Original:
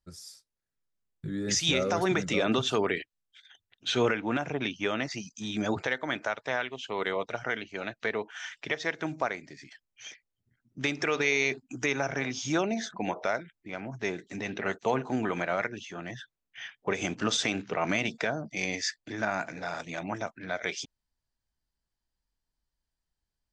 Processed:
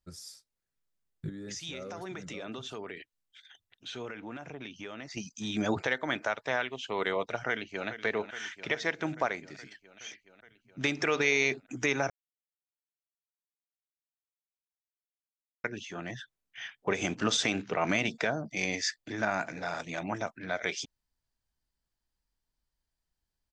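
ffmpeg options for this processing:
-filter_complex "[0:a]asettb=1/sr,asplit=3[s0][s1][s2];[s0]atrim=end=1.294[s3];[s1]atrim=start=1.29:end=5.17,asetpts=PTS-STARTPTS,afade=t=in:d=0.004:c=qsin,afade=t=out:st=3.876:d=0.004:c=qsin,acompressor=threshold=0.00631:ratio=2.5:attack=3.2:release=140:knee=1:detection=peak[s4];[s2]atrim=start=5.166[s5];[s3][s4]acrossfade=d=0.004:c1=hsin:c2=qsin[s6];[s6][s5]acrossfade=d=0.004:c1=qsin:c2=hsin,asplit=2[s7][s8];[s8]afade=t=in:st=7.48:d=0.01,afade=t=out:st=7.88:d=0.01,aecho=0:1:420|840|1260|1680|2100|2520|2940|3360|3780|4200|4620|5040:0.266073|0.199554|0.149666|0.112249|0.084187|0.0631403|0.0473552|0.0355164|0.0266373|0.019978|0.0149835|0.0112376[s9];[s7][s9]amix=inputs=2:normalize=0,asplit=3[s10][s11][s12];[s10]atrim=end=12.1,asetpts=PTS-STARTPTS,afade=t=out:st=12.096:d=0.004:c=hsin[s13];[s11]atrim=start=12.1:end=15.64,asetpts=PTS-STARTPTS,volume=0[s14];[s12]atrim=start=15.64,asetpts=PTS-STARTPTS,afade=t=in:d=0.004:c=hsin[s15];[s13][s14][s15]concat=n=3:v=0:a=1"

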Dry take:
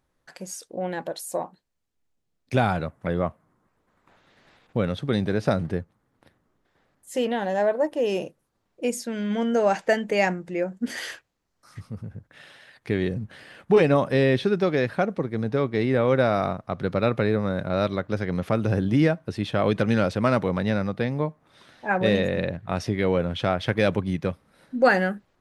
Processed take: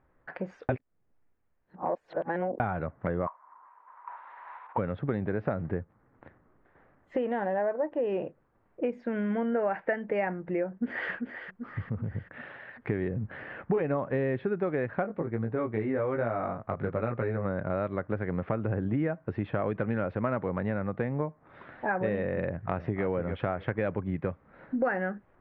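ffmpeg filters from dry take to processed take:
-filter_complex "[0:a]asplit=3[s0][s1][s2];[s0]afade=t=out:st=3.26:d=0.02[s3];[s1]highpass=f=970:t=q:w=9.5,afade=t=in:st=3.26:d=0.02,afade=t=out:st=4.77:d=0.02[s4];[s2]afade=t=in:st=4.77:d=0.02[s5];[s3][s4][s5]amix=inputs=3:normalize=0,asettb=1/sr,asplit=3[s6][s7][s8];[s6]atrim=end=9.524[s9];[s7]atrim=start=9.52:end=9.96,asetpts=PTS-STARTPTS,afade=t=in:d=0.004:c=qsin,afade=t=out:st=0.436:d=0.004:c=qsin,equalizer=f=1900:w=1.5:g=4.5[s10];[s8]atrim=start=9.956[s11];[s9][s10]acrossfade=d=0.004:c1=hsin:c2=qsin[s12];[s12][s11]acrossfade=d=0.004:c1=qsin:c2=hsin,asplit=2[s13][s14];[s14]afade=t=in:st=10.7:d=0.01,afade=t=out:st=11.11:d=0.01,aecho=0:1:390|780|1170|1560|1950:0.266073|0.133036|0.0665181|0.0332591|0.0166295[s15];[s13][s15]amix=inputs=2:normalize=0,asplit=3[s16][s17][s18];[s16]afade=t=out:st=15.03:d=0.02[s19];[s17]flanger=delay=17:depth=2.4:speed=1.1,afade=t=in:st=15.03:d=0.02,afade=t=out:st=17.44:d=0.02[s20];[s18]afade=t=in:st=17.44:d=0.02[s21];[s19][s20][s21]amix=inputs=3:normalize=0,asplit=2[s22][s23];[s23]afade=t=in:st=22.49:d=0.01,afade=t=out:st=23.05:d=0.01,aecho=0:1:290|580|870:0.334965|0.0837414|0.0209353[s24];[s22][s24]amix=inputs=2:normalize=0,asplit=3[s25][s26][s27];[s25]atrim=end=0.692[s28];[s26]atrim=start=0.688:end=2.602,asetpts=PTS-STARTPTS,areverse[s29];[s27]atrim=start=2.598[s30];[s28][s29]acrossfade=d=0.004:c1=hsin:c2=hsin[s31];[s31][s30]acrossfade=d=0.004:c1=hsin:c2=hsin,lowpass=f=2000:w=0.5412,lowpass=f=2000:w=1.3066,equalizer=f=190:w=1.5:g=-2.5,acompressor=threshold=0.0178:ratio=4,volume=2.11"

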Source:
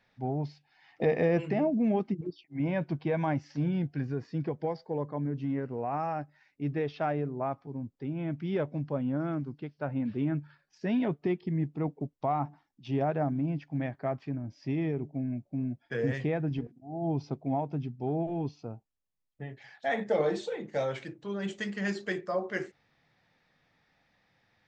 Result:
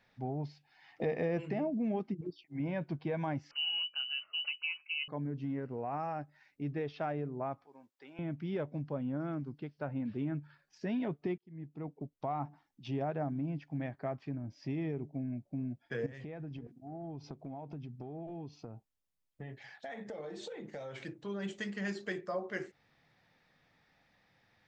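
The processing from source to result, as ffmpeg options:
-filter_complex "[0:a]asettb=1/sr,asplit=3[s0][s1][s2];[s0]atrim=end=3.514[s3];[s1]atrim=start=3.51:end=5.08,asetpts=PTS-STARTPTS,afade=t=in:d=0.004:c=qsin,afade=t=out:st=1.566:d=0.004:c=qsin,lowpass=f=2600:t=q:w=0.5098,lowpass=f=2600:t=q:w=0.6013,lowpass=f=2600:t=q:w=0.9,lowpass=f=2600:t=q:w=2.563,afreqshift=-3100[s4];[s2]atrim=start=5.076[s5];[s3][s4]acrossfade=d=0.004:c1=hsin:c2=qsin[s6];[s6][s5]acrossfade=d=0.004:c1=qsin:c2=hsin,asettb=1/sr,asplit=3[s7][s8][s9];[s7]atrim=end=7.644[s10];[s8]atrim=start=7.64:end=8.19,asetpts=PTS-STARTPTS,afade=t=in:d=0.004:c=qsin,afade=t=out:st=0.546:d=0.004:c=qsin,highpass=890[s11];[s9]atrim=start=8.186[s12];[s10][s11]acrossfade=d=0.004:c1=hsin:c2=qsin[s13];[s13][s12]acrossfade=d=0.004:c1=qsin:c2=hsin,asettb=1/sr,asplit=3[s14][s15][s16];[s14]atrim=end=16.064[s17];[s15]atrim=start=16.06:end=21.02,asetpts=PTS-STARTPTS,afade=t=in:d=0.004:c=qsin,afade=t=out:st=4.956:d=0.004:c=qsin,acompressor=threshold=0.0112:ratio=6:attack=3.2:release=140:knee=1:detection=peak[s18];[s16]atrim=start=21.016[s19];[s17][s18]acrossfade=d=0.004:c1=hsin:c2=qsin[s20];[s20][s19]acrossfade=d=0.004:c1=qsin:c2=hsin,asplit=2[s21][s22];[s21]atrim=end=11.38,asetpts=PTS-STARTPTS,afade=t=out:st=11.376:d=0.004:c=hsin[s23];[s22]atrim=start=11.38,asetpts=PTS-STARTPTS,afade=t=in:d=1.08[s24];[s23][s24]concat=n=2:v=0:a=1,acompressor=threshold=0.00708:ratio=1.5"

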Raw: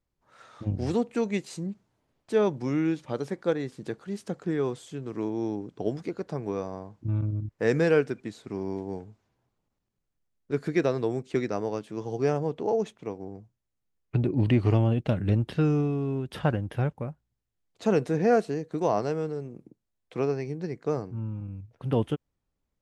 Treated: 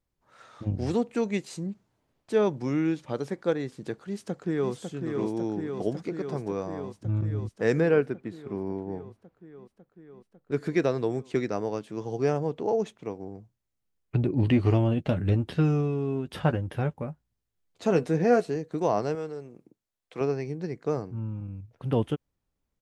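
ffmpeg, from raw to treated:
-filter_complex "[0:a]asplit=2[s0][s1];[s1]afade=t=in:st=4.01:d=0.01,afade=t=out:st=4.72:d=0.01,aecho=0:1:550|1100|1650|2200|2750|3300|3850|4400|4950|5500|6050|6600:0.562341|0.449873|0.359898|0.287919|0.230335|0.184268|0.147414|0.117932|0.0943452|0.0754762|0.0603809|0.0483048[s2];[s0][s2]amix=inputs=2:normalize=0,asettb=1/sr,asplit=3[s3][s4][s5];[s3]atrim=end=7.804[s6];[s4]atrim=start=7.8:end=10.52,asetpts=PTS-STARTPTS,afade=t=in:d=0.004:c=qsin,afade=t=out:st=2.716:d=0.004:c=qsin,equalizer=f=6600:w=0.65:g=-13[s7];[s5]atrim=start=10.516[s8];[s6][s7]acrossfade=d=0.004:c1=hsin:c2=qsin[s9];[s9][s8]acrossfade=d=0.004:c1=qsin:c2=hsin,asettb=1/sr,asplit=3[s10][s11][s12];[s10]atrim=end=14.424[s13];[s11]atrim=start=14.42:end=18.56,asetpts=PTS-STARTPTS,afade=t=in:d=0.004:c=qsin,afade=t=out:st=4.136:d=0.004:c=qsin,asplit=2[s14][s15];[s15]adelay=12,volume=0.355[s16];[s14][s16]amix=inputs=2:normalize=0,atrim=end_sample=182574[s17];[s12]atrim=start=18.556[s18];[s13][s17]acrossfade=d=0.004:c1=hsin:c2=qsin[s19];[s19][s18]acrossfade=d=0.004:c1=qsin:c2=hsin,asettb=1/sr,asplit=3[s20][s21][s22];[s20]atrim=end=19.154[s23];[s21]atrim=start=19.15:end=20.21,asetpts=PTS-STARTPTS,afade=t=in:d=0.004:c=qsin,afade=t=out:st=1.056:d=0.004:c=qsin,lowshelf=f=310:g=-10[s24];[s22]atrim=start=20.206[s25];[s23][s24]acrossfade=d=0.004:c1=hsin:c2=qsin[s26];[s26][s25]acrossfade=d=0.004:c1=qsin:c2=hsin"

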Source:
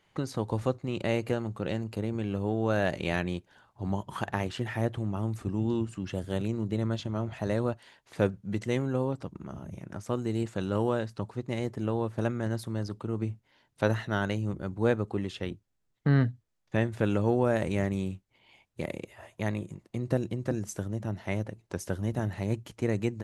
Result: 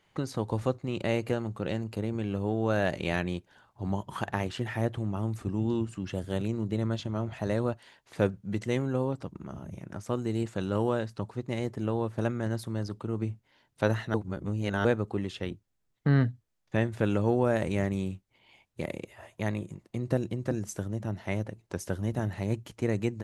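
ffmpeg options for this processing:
-filter_complex "[0:a]asplit=3[s0][s1][s2];[s0]atrim=end=14.142[s3];[s1]atrim=start=14.138:end=14.852,asetpts=PTS-STARTPTS,areverse[s4];[s2]atrim=start=14.848[s5];[s3][s4]acrossfade=d=0.004:c1=hsin:c2=hsin[s6];[s6][s5]acrossfade=d=0.004:c1=hsin:c2=hsin"

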